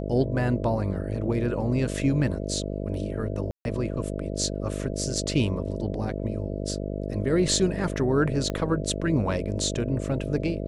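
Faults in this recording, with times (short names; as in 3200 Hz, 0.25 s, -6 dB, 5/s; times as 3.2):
buzz 50 Hz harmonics 13 -31 dBFS
3.51–3.65 gap 0.141 s
8.5 pop -16 dBFS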